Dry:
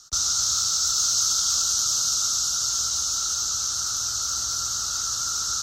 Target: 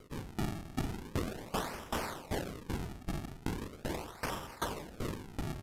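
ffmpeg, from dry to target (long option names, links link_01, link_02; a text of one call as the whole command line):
ffmpeg -i in.wav -filter_complex "[0:a]lowpass=frequency=2100:poles=1,bandreject=frequency=50:width_type=h:width=6,bandreject=frequency=100:width_type=h:width=6,bandreject=frequency=150:width_type=h:width=6,bandreject=frequency=200:width_type=h:width=6,bandreject=frequency=250:width_type=h:width=6,bandreject=frequency=300:width_type=h:width=6,aresample=16000,asoftclip=type=hard:threshold=-30.5dB,aresample=44100,asplit=3[link_01][link_02][link_03];[link_02]asetrate=55563,aresample=44100,atempo=0.793701,volume=-2dB[link_04];[link_03]asetrate=58866,aresample=44100,atempo=0.749154,volume=-11dB[link_05];[link_01][link_04][link_05]amix=inputs=3:normalize=0,acrusher=samples=34:mix=1:aa=0.000001:lfo=1:lforange=54.4:lforate=0.4,asetrate=30296,aresample=44100,atempo=1.45565,aeval=exprs='val(0)*pow(10,-21*if(lt(mod(2.6*n/s,1),2*abs(2.6)/1000),1-mod(2.6*n/s,1)/(2*abs(2.6)/1000),(mod(2.6*n/s,1)-2*abs(2.6)/1000)/(1-2*abs(2.6)/1000))/20)':channel_layout=same,volume=1dB" out.wav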